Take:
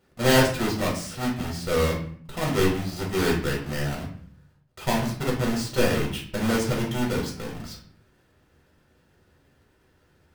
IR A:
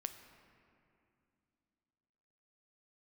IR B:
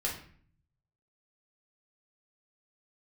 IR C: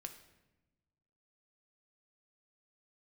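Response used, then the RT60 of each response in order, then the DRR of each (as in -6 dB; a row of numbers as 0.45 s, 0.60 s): B; 2.6 s, 0.50 s, 1.0 s; 8.0 dB, -3.0 dB, 5.5 dB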